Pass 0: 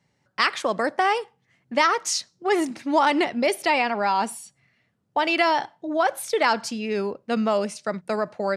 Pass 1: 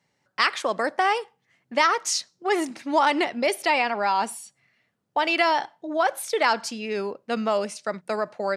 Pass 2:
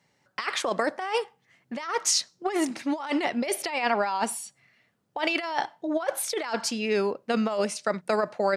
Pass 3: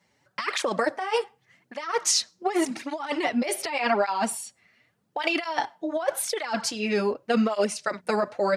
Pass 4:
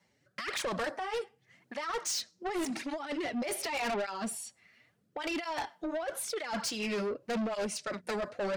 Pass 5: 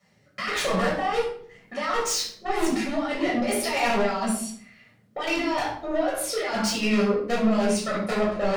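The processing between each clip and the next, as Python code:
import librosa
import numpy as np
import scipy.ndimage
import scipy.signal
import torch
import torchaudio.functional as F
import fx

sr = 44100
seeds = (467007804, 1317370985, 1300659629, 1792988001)

y1 = fx.low_shelf(x, sr, hz=200.0, db=-10.5)
y2 = fx.over_compress(y1, sr, threshold_db=-25.0, ratio=-0.5)
y3 = fx.flanger_cancel(y2, sr, hz=0.86, depth_ms=8.0)
y3 = F.gain(torch.from_numpy(y3), 4.0).numpy()
y4 = fx.rotary_switch(y3, sr, hz=1.0, then_hz=6.3, switch_at_s=6.92)
y4 = 10.0 ** (-30.0 / 20.0) * np.tanh(y4 / 10.0 ** (-30.0 / 20.0))
y5 = fx.room_shoebox(y4, sr, seeds[0], volume_m3=810.0, walls='furnished', distance_m=6.3)
y5 = F.gain(torch.from_numpy(y5), 1.0).numpy()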